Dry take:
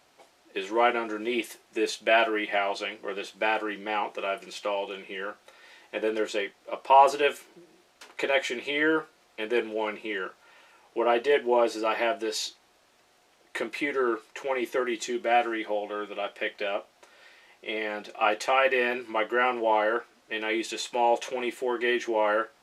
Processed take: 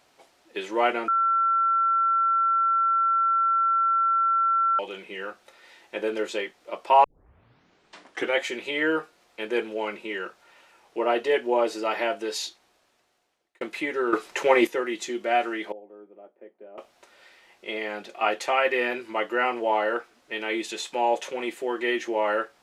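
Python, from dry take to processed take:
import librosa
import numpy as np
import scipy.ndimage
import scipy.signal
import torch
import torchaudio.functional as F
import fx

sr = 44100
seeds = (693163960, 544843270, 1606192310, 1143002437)

y = fx.ladder_bandpass(x, sr, hz=330.0, resonance_pct=20, at=(15.72, 16.78))
y = fx.edit(y, sr, fx.bleep(start_s=1.08, length_s=3.71, hz=1350.0, db=-19.0),
    fx.tape_start(start_s=7.04, length_s=1.36),
    fx.fade_out_span(start_s=12.43, length_s=1.18),
    fx.clip_gain(start_s=14.13, length_s=0.54, db=10.0), tone=tone)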